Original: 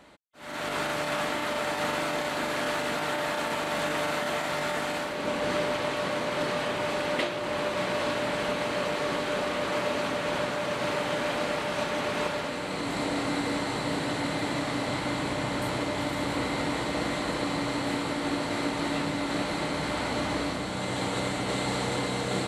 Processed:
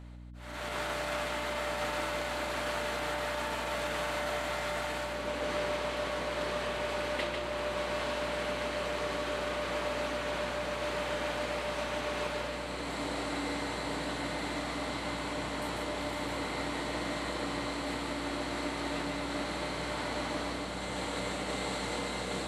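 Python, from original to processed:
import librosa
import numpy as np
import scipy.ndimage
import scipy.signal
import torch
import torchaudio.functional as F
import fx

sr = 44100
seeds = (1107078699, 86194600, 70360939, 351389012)

p1 = fx.low_shelf(x, sr, hz=180.0, db=-9.0)
p2 = p1 + fx.echo_single(p1, sr, ms=147, db=-4.5, dry=0)
p3 = fx.add_hum(p2, sr, base_hz=60, snr_db=12)
y = p3 * librosa.db_to_amplitude(-6.0)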